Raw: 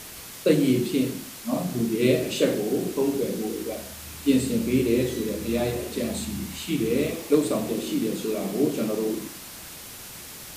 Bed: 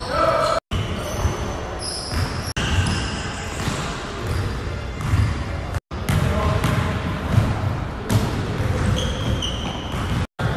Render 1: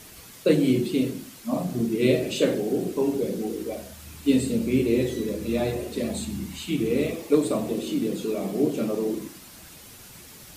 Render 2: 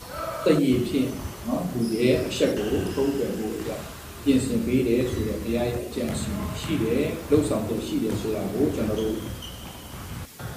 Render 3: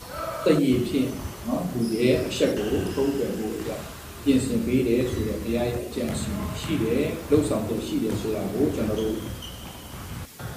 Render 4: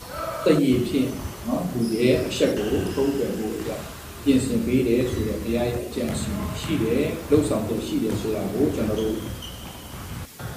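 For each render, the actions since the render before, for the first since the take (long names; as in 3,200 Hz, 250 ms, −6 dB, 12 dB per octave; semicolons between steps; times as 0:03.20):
broadband denoise 7 dB, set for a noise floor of −41 dBFS
mix in bed −13.5 dB
no processing that can be heard
level +1.5 dB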